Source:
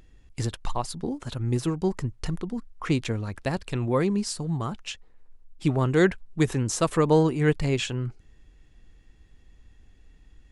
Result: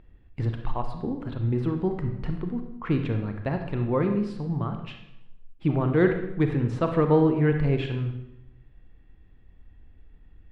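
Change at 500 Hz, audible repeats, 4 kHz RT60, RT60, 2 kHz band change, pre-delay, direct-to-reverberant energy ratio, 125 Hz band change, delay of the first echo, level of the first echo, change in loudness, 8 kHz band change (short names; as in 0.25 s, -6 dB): 0.0 dB, none, 0.75 s, 0.85 s, -2.5 dB, 29 ms, 5.0 dB, +1.0 dB, none, none, +0.5 dB, under -25 dB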